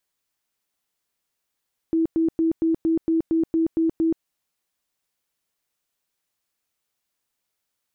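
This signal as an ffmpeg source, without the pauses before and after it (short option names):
-f lavfi -i "aevalsrc='0.141*sin(2*PI*326*mod(t,0.23))*lt(mod(t,0.23),41/326)':d=2.3:s=44100"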